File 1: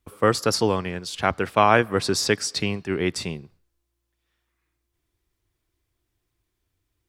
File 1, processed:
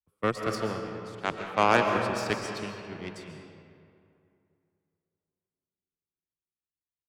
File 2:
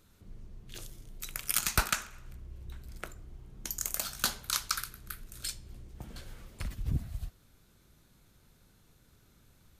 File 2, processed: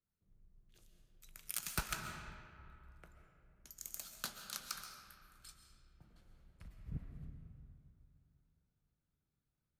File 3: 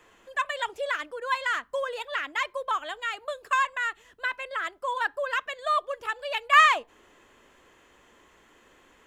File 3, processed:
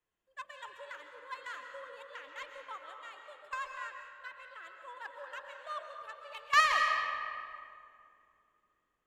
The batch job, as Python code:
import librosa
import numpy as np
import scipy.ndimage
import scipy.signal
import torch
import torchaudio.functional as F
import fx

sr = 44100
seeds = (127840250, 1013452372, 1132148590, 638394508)

y = fx.peak_eq(x, sr, hz=160.0, db=7.0, octaves=0.41)
y = fx.cheby_harmonics(y, sr, harmonics=(7,), levels_db=(-20,), full_scale_db=-0.5)
y = fx.rev_freeverb(y, sr, rt60_s=3.5, hf_ratio=0.55, predelay_ms=95, drr_db=2.0)
y = fx.band_widen(y, sr, depth_pct=40)
y = y * 10.0 ** (-8.0 / 20.0)